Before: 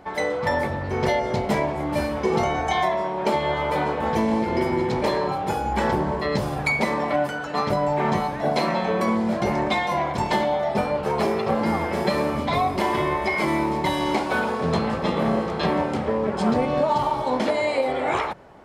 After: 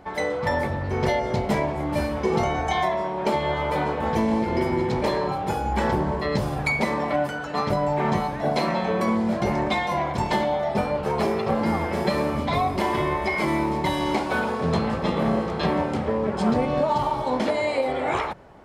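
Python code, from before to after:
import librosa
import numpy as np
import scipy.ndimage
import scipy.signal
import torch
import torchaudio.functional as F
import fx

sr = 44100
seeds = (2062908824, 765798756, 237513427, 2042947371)

y = fx.low_shelf(x, sr, hz=130.0, db=5.5)
y = y * 10.0 ** (-1.5 / 20.0)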